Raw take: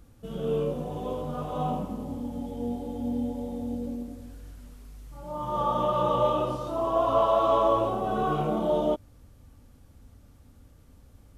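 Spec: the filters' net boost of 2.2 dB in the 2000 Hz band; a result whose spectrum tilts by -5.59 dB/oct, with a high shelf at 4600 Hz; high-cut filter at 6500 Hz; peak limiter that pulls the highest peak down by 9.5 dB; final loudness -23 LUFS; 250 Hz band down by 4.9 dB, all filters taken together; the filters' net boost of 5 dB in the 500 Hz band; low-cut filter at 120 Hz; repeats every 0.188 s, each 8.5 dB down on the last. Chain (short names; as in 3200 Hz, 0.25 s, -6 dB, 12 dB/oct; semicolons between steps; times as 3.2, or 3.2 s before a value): HPF 120 Hz; LPF 6500 Hz; bell 250 Hz -8.5 dB; bell 500 Hz +8 dB; bell 2000 Hz +3.5 dB; high shelf 4600 Hz -3 dB; limiter -17.5 dBFS; feedback echo 0.188 s, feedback 38%, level -8.5 dB; gain +4.5 dB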